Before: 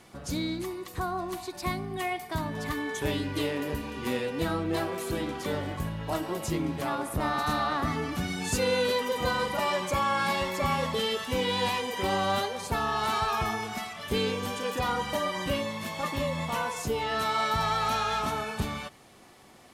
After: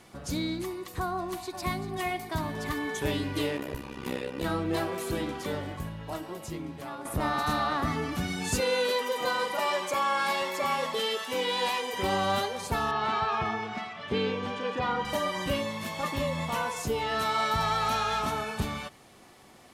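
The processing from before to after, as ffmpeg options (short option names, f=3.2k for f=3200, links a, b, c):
-filter_complex "[0:a]asplit=2[a][b];[b]afade=t=in:st=1.14:d=0.01,afade=t=out:st=1.9:d=0.01,aecho=0:1:390|780|1170|1560|1950|2340|2730|3120|3510:0.316228|0.205548|0.133606|0.0868441|0.0564486|0.0366916|0.0238495|0.0155022|0.0100764[c];[a][c]amix=inputs=2:normalize=0,asplit=3[d][e][f];[d]afade=t=out:st=3.56:d=0.02[g];[e]tremolo=f=66:d=0.947,afade=t=in:st=3.56:d=0.02,afade=t=out:st=4.43:d=0.02[h];[f]afade=t=in:st=4.43:d=0.02[i];[g][h][i]amix=inputs=3:normalize=0,asettb=1/sr,asplit=3[j][k][l];[j]atrim=end=8.604[m];[k]atrim=start=8.6:end=11.93,asetpts=PTS-STARTPTS,afade=t=in:d=0.004:c=qsin,afade=t=out:st=3.326:d=0.004:c=qsin,highpass=330[n];[l]atrim=start=11.926[o];[m][n]acrossfade=d=0.004:c1=hsin:c2=qsin[p];[p][o]acrossfade=d=0.004:c1=qsin:c2=hsin,asettb=1/sr,asplit=3[q][r][s];[q]atrim=end=12.914[t];[r]atrim=start=12.91:end=15.05,asetpts=PTS-STARTPTS,afade=t=in:d=0.004:c=qsin,afade=t=out:st=2.136:d=0.004:c=qsin,highpass=100,lowpass=3.3k[u];[s]atrim=start=15.046[v];[t][u]acrossfade=d=0.004:c1=hsin:c2=qsin[w];[w][v]acrossfade=d=0.004:c1=qsin:c2=hsin,asplit=2[x][y];[x]atrim=end=7.05,asetpts=PTS-STARTPTS,afade=t=out:st=5.21:d=1.84:c=qua:silence=0.375837[z];[y]atrim=start=7.05,asetpts=PTS-STARTPTS,afade=t=in:d=0.004:c=hsin:silence=0.375837[aa];[z][aa]concat=n=2:v=0:a=1"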